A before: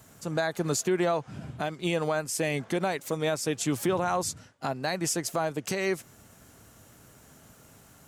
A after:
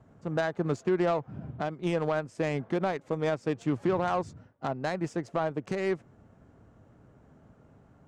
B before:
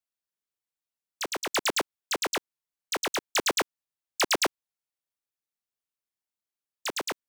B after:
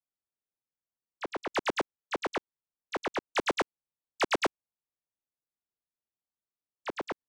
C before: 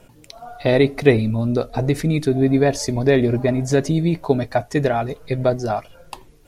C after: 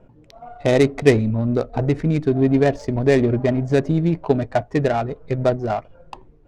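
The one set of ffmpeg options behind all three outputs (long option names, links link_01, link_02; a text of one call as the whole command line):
ffmpeg -i in.wav -af "adynamicsmooth=sensitivity=1:basefreq=1100,equalizer=frequency=7900:width_type=o:width=1.2:gain=7.5" out.wav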